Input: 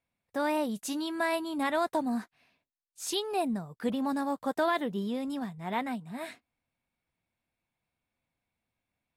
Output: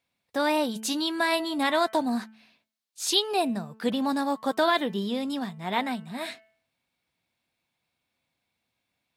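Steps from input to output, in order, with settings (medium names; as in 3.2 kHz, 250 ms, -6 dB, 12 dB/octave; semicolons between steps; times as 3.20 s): high-pass 130 Hz 6 dB/octave; peaking EQ 4 kHz +7.5 dB 1.1 oct; de-hum 219.6 Hz, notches 14; trim +4.5 dB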